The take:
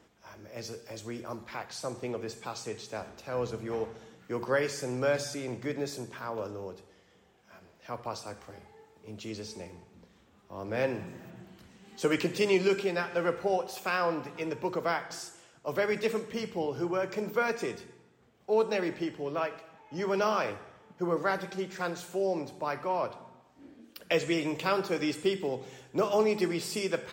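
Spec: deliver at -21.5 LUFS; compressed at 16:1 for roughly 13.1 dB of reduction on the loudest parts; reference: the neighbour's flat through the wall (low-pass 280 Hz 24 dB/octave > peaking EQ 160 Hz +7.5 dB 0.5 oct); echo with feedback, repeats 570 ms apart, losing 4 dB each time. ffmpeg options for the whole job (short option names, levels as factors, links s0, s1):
-af "acompressor=threshold=0.02:ratio=16,lowpass=f=280:w=0.5412,lowpass=f=280:w=1.3066,equalizer=f=160:t=o:w=0.5:g=7.5,aecho=1:1:570|1140|1710|2280|2850|3420|3990|4560|5130:0.631|0.398|0.25|0.158|0.0994|0.0626|0.0394|0.0249|0.0157,volume=14.1"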